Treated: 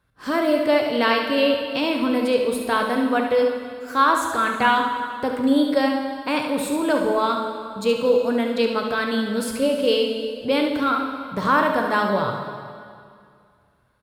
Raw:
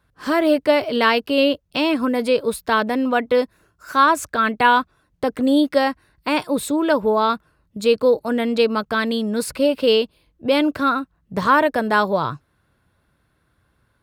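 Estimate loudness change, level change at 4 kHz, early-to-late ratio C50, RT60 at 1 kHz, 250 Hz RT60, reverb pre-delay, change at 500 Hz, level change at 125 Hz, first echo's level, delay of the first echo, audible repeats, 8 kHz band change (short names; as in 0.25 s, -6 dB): -2.0 dB, -2.0 dB, 3.0 dB, 2.2 s, 2.2 s, 5 ms, -1.5 dB, -1.5 dB, -8.0 dB, 71 ms, 1, -2.0 dB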